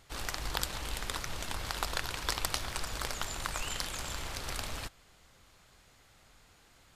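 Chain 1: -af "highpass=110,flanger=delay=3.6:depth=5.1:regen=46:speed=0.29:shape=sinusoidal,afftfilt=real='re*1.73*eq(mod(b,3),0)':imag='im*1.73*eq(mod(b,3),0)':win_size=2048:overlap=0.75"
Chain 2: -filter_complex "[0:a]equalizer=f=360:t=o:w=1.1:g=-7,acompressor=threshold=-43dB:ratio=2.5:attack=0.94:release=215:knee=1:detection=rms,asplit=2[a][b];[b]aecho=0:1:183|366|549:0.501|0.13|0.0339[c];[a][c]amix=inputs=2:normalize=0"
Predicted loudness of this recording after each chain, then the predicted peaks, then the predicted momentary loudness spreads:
-43.0, -46.5 LUFS; -18.5, -25.0 dBFS; 5, 15 LU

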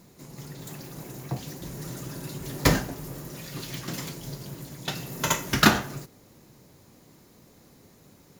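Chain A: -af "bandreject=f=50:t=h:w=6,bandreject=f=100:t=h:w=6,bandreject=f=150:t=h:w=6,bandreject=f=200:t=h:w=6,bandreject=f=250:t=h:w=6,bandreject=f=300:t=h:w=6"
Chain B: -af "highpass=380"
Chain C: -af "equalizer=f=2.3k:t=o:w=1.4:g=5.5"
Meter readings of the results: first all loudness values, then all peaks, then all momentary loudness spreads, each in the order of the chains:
-29.0, -30.0, -26.5 LUFS; -3.5, -5.0, -1.5 dBFS; 20, 21, 21 LU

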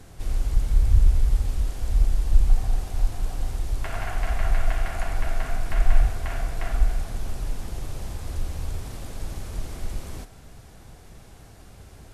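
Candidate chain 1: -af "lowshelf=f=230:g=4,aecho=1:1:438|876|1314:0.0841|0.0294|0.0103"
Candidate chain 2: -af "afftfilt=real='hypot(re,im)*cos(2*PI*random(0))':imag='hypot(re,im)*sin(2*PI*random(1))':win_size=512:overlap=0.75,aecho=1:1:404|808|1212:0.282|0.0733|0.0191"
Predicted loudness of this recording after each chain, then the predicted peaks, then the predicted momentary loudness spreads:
-24.5, -31.5 LUFS; -1.0, -9.0 dBFS; 13, 14 LU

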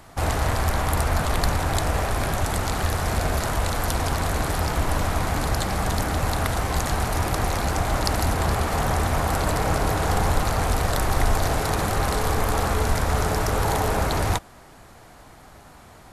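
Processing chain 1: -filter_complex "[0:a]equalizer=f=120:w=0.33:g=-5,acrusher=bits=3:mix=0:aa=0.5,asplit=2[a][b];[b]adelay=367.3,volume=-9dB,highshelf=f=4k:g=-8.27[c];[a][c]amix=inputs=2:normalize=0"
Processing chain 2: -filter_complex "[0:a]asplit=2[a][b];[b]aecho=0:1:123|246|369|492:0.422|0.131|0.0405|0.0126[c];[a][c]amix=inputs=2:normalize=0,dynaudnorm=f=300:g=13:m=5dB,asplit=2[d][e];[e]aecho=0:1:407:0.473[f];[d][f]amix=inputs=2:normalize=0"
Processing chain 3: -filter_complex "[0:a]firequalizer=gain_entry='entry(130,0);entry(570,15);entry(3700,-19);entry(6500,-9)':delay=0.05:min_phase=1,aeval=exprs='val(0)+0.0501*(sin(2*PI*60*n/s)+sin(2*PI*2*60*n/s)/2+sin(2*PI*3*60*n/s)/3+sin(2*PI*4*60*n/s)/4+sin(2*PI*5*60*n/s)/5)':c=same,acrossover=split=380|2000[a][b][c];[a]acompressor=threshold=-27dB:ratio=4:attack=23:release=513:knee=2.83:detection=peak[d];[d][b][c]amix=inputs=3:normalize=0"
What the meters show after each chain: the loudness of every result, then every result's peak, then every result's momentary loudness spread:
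-24.5, -20.0, -17.0 LUFS; -4.0, -1.5, -1.5 dBFS; 2, 4, 4 LU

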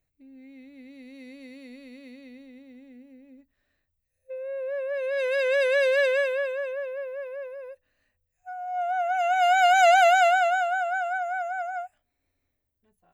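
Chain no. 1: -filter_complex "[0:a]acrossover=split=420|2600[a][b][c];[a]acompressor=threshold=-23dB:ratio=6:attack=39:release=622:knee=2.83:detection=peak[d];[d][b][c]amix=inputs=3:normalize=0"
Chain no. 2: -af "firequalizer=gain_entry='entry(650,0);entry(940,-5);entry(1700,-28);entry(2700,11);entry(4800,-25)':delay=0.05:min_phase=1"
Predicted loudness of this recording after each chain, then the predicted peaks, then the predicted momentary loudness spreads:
-23.5, -23.5 LUFS; -9.0, -9.0 dBFS; 20, 20 LU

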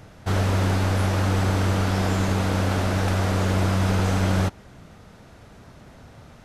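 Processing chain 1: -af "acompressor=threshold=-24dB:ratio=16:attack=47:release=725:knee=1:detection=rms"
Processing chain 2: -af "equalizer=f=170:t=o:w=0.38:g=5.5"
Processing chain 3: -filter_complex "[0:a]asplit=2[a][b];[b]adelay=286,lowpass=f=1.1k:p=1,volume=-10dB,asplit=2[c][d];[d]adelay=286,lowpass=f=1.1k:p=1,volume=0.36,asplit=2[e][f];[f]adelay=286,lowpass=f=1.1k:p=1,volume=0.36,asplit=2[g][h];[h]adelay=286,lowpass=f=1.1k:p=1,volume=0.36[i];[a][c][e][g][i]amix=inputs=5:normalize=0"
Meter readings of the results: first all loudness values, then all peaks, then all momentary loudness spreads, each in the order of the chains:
-29.5, -22.0, -22.5 LUFS; -16.0, -8.5, -8.0 dBFS; 19, 2, 8 LU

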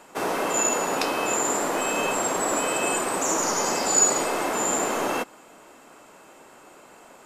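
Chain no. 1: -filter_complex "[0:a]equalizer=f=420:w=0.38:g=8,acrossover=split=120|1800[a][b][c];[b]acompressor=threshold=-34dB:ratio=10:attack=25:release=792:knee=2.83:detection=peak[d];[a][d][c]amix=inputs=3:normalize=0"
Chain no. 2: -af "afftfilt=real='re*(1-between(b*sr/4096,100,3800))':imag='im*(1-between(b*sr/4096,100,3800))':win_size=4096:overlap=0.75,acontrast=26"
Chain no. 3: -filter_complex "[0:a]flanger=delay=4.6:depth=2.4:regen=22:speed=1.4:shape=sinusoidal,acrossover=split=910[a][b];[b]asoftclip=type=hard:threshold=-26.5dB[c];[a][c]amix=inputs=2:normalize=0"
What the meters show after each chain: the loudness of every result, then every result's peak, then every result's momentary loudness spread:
-25.0, -21.0, -27.5 LUFS; -8.0, -5.5, -16.5 dBFS; 23, 13, 3 LU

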